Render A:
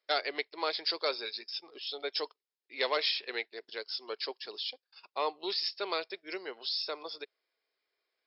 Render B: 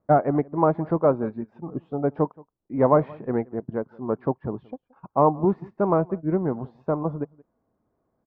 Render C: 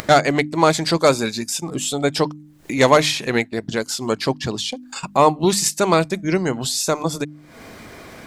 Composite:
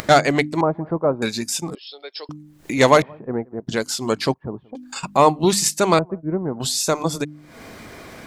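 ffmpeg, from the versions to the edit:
-filter_complex "[1:a]asplit=4[s0][s1][s2][s3];[2:a]asplit=6[s4][s5][s6][s7][s8][s9];[s4]atrim=end=0.612[s10];[s0]atrim=start=0.608:end=1.222[s11];[s5]atrim=start=1.218:end=1.752[s12];[0:a]atrim=start=1.748:end=2.292[s13];[s6]atrim=start=2.288:end=3.022[s14];[s1]atrim=start=3.018:end=3.672[s15];[s7]atrim=start=3.668:end=4.342[s16];[s2]atrim=start=4.338:end=4.752[s17];[s8]atrim=start=4.748:end=5.992[s18];[s3]atrim=start=5.988:end=6.602[s19];[s9]atrim=start=6.598[s20];[s10][s11]acrossfade=d=0.004:c1=hsin:c2=hsin[s21];[s21][s12]acrossfade=d=0.004:c1=hsin:c2=hsin[s22];[s22][s13]acrossfade=d=0.004:c1=hsin:c2=hsin[s23];[s23][s14]acrossfade=d=0.004:c1=hsin:c2=hsin[s24];[s24][s15]acrossfade=d=0.004:c1=hsin:c2=hsin[s25];[s25][s16]acrossfade=d=0.004:c1=hsin:c2=hsin[s26];[s26][s17]acrossfade=d=0.004:c1=hsin:c2=hsin[s27];[s27][s18]acrossfade=d=0.004:c1=hsin:c2=hsin[s28];[s28][s19]acrossfade=d=0.004:c1=hsin:c2=hsin[s29];[s29][s20]acrossfade=d=0.004:c1=hsin:c2=hsin"

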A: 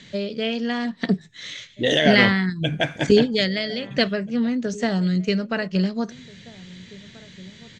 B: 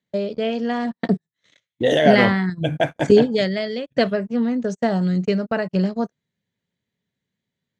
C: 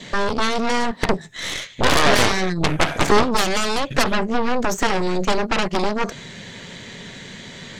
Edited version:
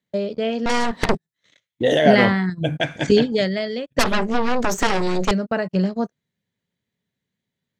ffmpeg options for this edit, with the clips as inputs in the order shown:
-filter_complex "[2:a]asplit=2[s0][s1];[1:a]asplit=4[s2][s3][s4][s5];[s2]atrim=end=0.662[s6];[s0]atrim=start=0.658:end=1.152[s7];[s3]atrim=start=1.148:end=2.802[s8];[0:a]atrim=start=2.798:end=3.322[s9];[s4]atrim=start=3.318:end=3.992[s10];[s1]atrim=start=3.988:end=5.312[s11];[s5]atrim=start=5.308[s12];[s6][s7]acrossfade=d=0.004:c1=hsin:c2=hsin[s13];[s13][s8]acrossfade=d=0.004:c1=hsin:c2=hsin[s14];[s14][s9]acrossfade=d=0.004:c1=hsin:c2=hsin[s15];[s15][s10]acrossfade=d=0.004:c1=hsin:c2=hsin[s16];[s16][s11]acrossfade=d=0.004:c1=hsin:c2=hsin[s17];[s17][s12]acrossfade=d=0.004:c1=hsin:c2=hsin"

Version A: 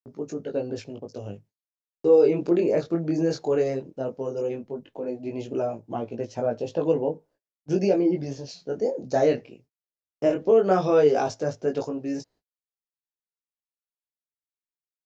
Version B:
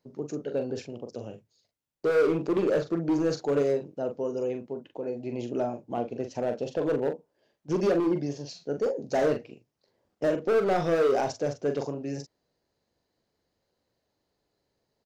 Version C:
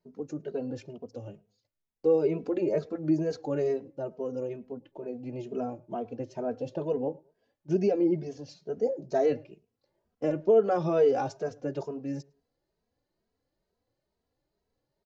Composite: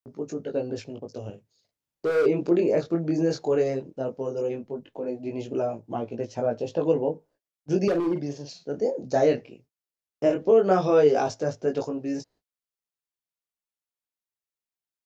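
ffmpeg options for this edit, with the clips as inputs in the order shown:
-filter_complex "[1:a]asplit=2[s0][s1];[0:a]asplit=3[s2][s3][s4];[s2]atrim=end=1.302[s5];[s0]atrim=start=1.298:end=2.262[s6];[s3]atrim=start=2.258:end=7.882[s7];[s1]atrim=start=7.878:end=8.752[s8];[s4]atrim=start=8.748[s9];[s5][s6]acrossfade=d=0.004:c1=hsin:c2=hsin[s10];[s10][s7]acrossfade=d=0.004:c1=hsin:c2=hsin[s11];[s11][s8]acrossfade=d=0.004:c1=hsin:c2=hsin[s12];[s12][s9]acrossfade=d=0.004:c1=hsin:c2=hsin"

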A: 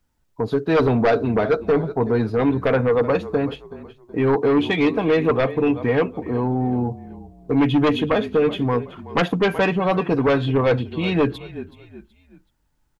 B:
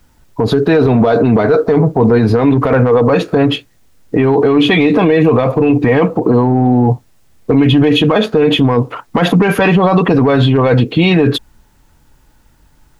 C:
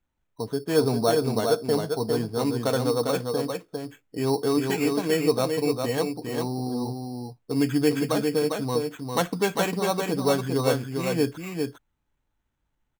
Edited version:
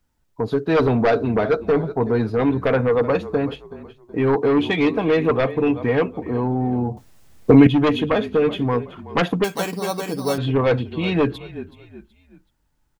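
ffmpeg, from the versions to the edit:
-filter_complex "[0:a]asplit=3[s0][s1][s2];[s0]atrim=end=6.972[s3];[1:a]atrim=start=6.968:end=7.672[s4];[s1]atrim=start=7.668:end=9.442[s5];[2:a]atrim=start=9.438:end=10.382[s6];[s2]atrim=start=10.378[s7];[s3][s4]acrossfade=d=0.004:c1=hsin:c2=hsin[s8];[s8][s5]acrossfade=d=0.004:c1=hsin:c2=hsin[s9];[s9][s6]acrossfade=d=0.004:c1=hsin:c2=hsin[s10];[s10][s7]acrossfade=d=0.004:c1=hsin:c2=hsin"

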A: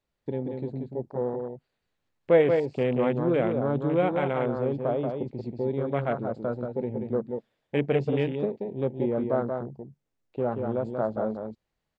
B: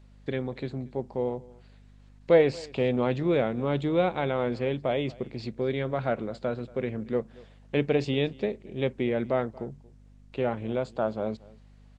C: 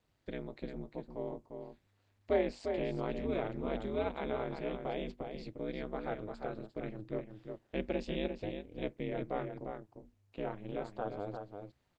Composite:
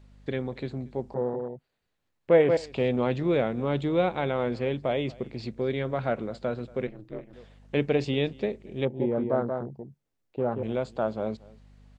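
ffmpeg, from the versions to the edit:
-filter_complex "[0:a]asplit=2[s0][s1];[1:a]asplit=4[s2][s3][s4][s5];[s2]atrim=end=1.142[s6];[s0]atrim=start=1.138:end=2.572[s7];[s3]atrim=start=2.568:end=6.872[s8];[2:a]atrim=start=6.868:end=7.332[s9];[s4]atrim=start=7.328:end=8.852[s10];[s1]atrim=start=8.848:end=10.632[s11];[s5]atrim=start=10.628[s12];[s6][s7]acrossfade=d=0.004:c1=hsin:c2=hsin[s13];[s13][s8]acrossfade=d=0.004:c1=hsin:c2=hsin[s14];[s14][s9]acrossfade=d=0.004:c1=hsin:c2=hsin[s15];[s15][s10]acrossfade=d=0.004:c1=hsin:c2=hsin[s16];[s16][s11]acrossfade=d=0.004:c1=hsin:c2=hsin[s17];[s17][s12]acrossfade=d=0.004:c1=hsin:c2=hsin"

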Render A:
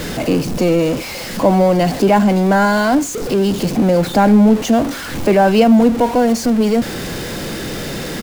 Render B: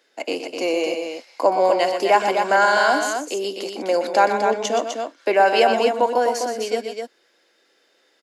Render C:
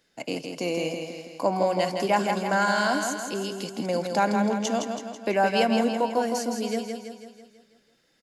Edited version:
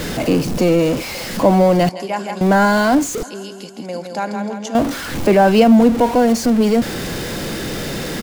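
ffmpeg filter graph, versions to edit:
-filter_complex "[2:a]asplit=2[s0][s1];[0:a]asplit=3[s2][s3][s4];[s2]atrim=end=1.892[s5];[s0]atrim=start=1.888:end=2.412[s6];[s3]atrim=start=2.408:end=3.232[s7];[s1]atrim=start=3.228:end=4.752[s8];[s4]atrim=start=4.748[s9];[s5][s6]acrossfade=d=0.004:c1=hsin:c2=hsin[s10];[s10][s7]acrossfade=d=0.004:c1=hsin:c2=hsin[s11];[s11][s8]acrossfade=d=0.004:c1=hsin:c2=hsin[s12];[s12][s9]acrossfade=d=0.004:c1=hsin:c2=hsin"

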